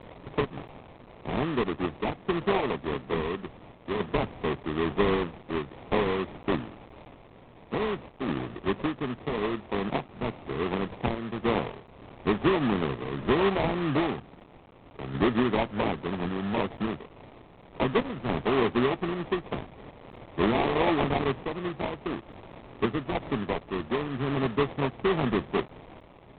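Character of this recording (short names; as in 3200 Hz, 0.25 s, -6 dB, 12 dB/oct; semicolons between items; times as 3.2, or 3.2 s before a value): a quantiser's noise floor 8-bit, dither triangular; random-step tremolo 3.5 Hz; aliases and images of a low sample rate 1500 Hz, jitter 20%; IMA ADPCM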